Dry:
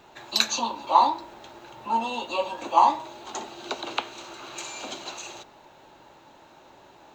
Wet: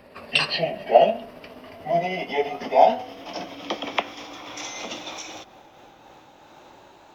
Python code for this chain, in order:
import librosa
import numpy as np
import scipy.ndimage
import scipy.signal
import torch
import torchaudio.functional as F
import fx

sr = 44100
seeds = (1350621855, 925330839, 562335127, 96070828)

y = fx.pitch_glide(x, sr, semitones=-7.0, runs='ending unshifted')
y = F.gain(torch.from_numpy(y), 4.0).numpy()